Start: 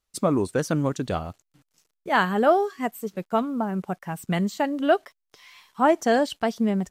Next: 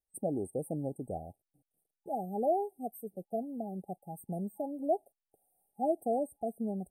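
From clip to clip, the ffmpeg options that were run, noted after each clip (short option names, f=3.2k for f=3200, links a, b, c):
-af "afftfilt=real='re*(1-between(b*sr/4096,830,8200))':imag='im*(1-between(b*sr/4096,830,8200))':win_size=4096:overlap=0.75,lowshelf=f=480:g=-6,volume=-7.5dB"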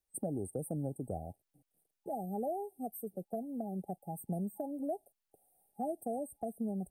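-filter_complex "[0:a]acrossover=split=160|3000[a][b][c];[b]acompressor=threshold=-42dB:ratio=3[d];[a][d][c]amix=inputs=3:normalize=0,volume=3.5dB"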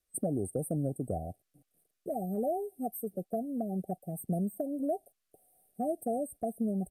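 -af "asuperstop=centerf=890:order=20:qfactor=3.8,aresample=32000,aresample=44100,volume=5dB"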